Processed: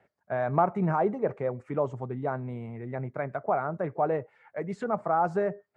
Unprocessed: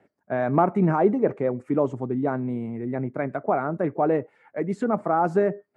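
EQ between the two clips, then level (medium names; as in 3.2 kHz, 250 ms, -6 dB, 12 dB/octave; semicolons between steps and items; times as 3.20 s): peaking EQ 280 Hz -12.5 dB 1.2 oct; dynamic bell 2.4 kHz, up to -4 dB, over -42 dBFS, Q 0.75; distance through air 57 m; 0.0 dB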